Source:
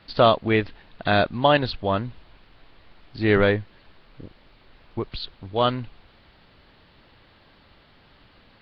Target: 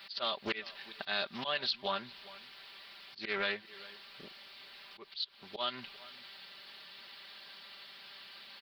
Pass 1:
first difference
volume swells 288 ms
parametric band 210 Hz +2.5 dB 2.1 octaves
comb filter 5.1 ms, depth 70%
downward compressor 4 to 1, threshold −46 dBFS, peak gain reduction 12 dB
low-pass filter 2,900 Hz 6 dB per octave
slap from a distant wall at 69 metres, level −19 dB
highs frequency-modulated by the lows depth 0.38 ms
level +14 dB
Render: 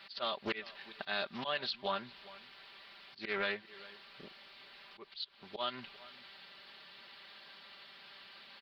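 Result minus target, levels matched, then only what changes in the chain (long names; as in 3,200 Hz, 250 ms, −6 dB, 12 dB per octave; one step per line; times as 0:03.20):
4,000 Hz band −3.5 dB
remove: low-pass filter 2,900 Hz 6 dB per octave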